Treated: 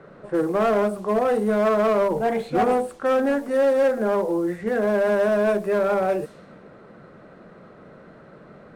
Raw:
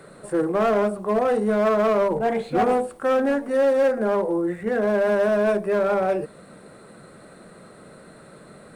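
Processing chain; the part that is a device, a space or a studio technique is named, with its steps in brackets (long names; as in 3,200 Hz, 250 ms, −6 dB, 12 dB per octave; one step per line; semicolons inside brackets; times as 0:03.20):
cassette deck with a dynamic noise filter (white noise bed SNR 33 dB; low-pass that shuts in the quiet parts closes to 1,600 Hz, open at −21 dBFS)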